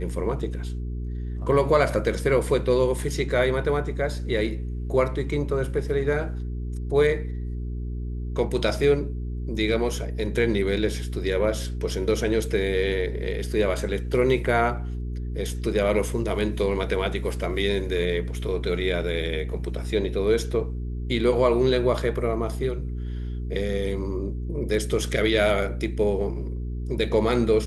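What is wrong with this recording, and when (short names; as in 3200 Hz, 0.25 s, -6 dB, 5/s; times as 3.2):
hum 60 Hz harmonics 7 -30 dBFS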